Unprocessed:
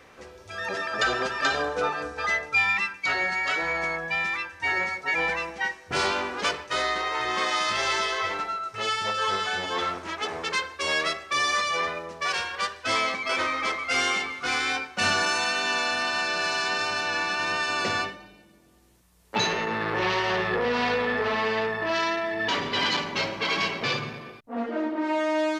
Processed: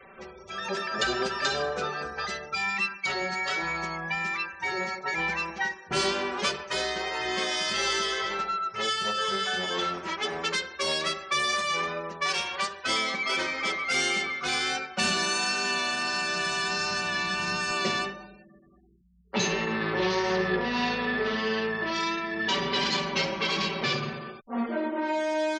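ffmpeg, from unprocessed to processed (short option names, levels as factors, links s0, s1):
-filter_complex "[0:a]asettb=1/sr,asplit=3[s0][s1][s2];[s0]atrim=end=15.684[s3];[s1]atrim=start=15.68:end=17.71,asetpts=PTS-STARTPTS,afade=t=in:d=0.004:c=qsin,afade=t=out:st=2.026:d=0.004:c=qsin,asubboost=boost=7.5:cutoff=160[s4];[s2]atrim=start=17.706[s5];[s3][s4]acrossfade=d=0.004:c1=hsin:c2=qsin[s6];[s6][s5]acrossfade=d=0.004:c1=qsin:c2=hsin,acrossover=split=480|3000[s7][s8][s9];[s8]acompressor=threshold=0.0251:ratio=6[s10];[s7][s10][s9]amix=inputs=3:normalize=0,aecho=1:1:5.2:0.74,afftfilt=real='re*gte(hypot(re,im),0.00355)':imag='im*gte(hypot(re,im),0.00355)':win_size=1024:overlap=0.75"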